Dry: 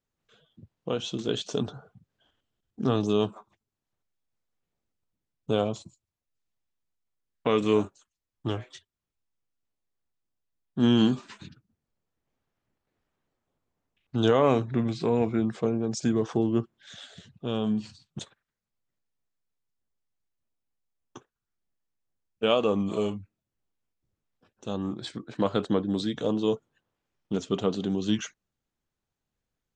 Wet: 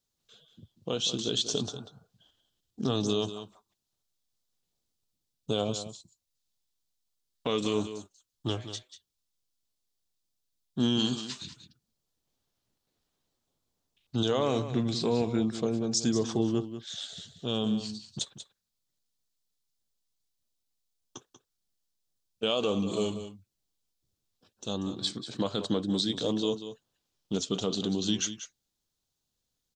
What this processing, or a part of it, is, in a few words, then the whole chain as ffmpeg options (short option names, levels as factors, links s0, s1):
over-bright horn tweeter: -filter_complex "[0:a]highshelf=f=2900:t=q:w=1.5:g=9.5,alimiter=limit=0.178:level=0:latency=1:release=102,asettb=1/sr,asplit=3[s0][s1][s2];[s0]atrim=end=10.994[s3];[s1]atrim=start=10.99:end=11.45,asetpts=PTS-STARTPTS,afade=t=in:d=0.004:c=qsin,afade=t=out:st=0.456:d=0.004:c=qsin,tiltshelf=f=970:g=-3.5[s4];[s2]atrim=start=11.446[s5];[s3][s4]acrossfade=d=0.004:c1=hsin:c2=qsin[s6];[s6][s5]acrossfade=d=0.004:c1=qsin:c2=hsin,aecho=1:1:189:0.266,volume=0.794"